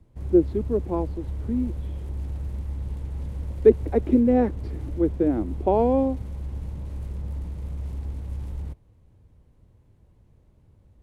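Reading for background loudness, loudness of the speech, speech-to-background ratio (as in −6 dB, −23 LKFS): −34.0 LKFS, −23.0 LKFS, 11.0 dB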